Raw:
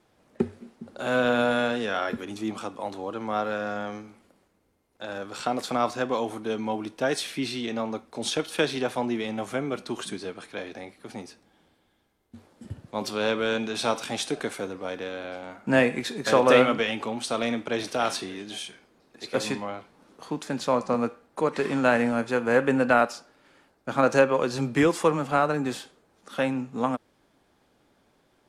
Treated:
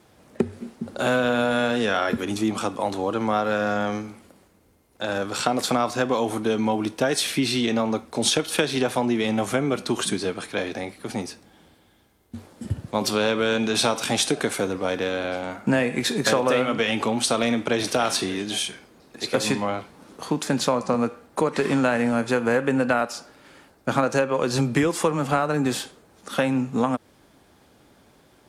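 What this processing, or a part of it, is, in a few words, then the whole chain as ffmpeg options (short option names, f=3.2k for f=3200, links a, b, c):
ASMR close-microphone chain: -af "lowshelf=f=150:g=5.5,acompressor=threshold=-26dB:ratio=6,highpass=43,highshelf=f=6.6k:g=6,volume=8dB"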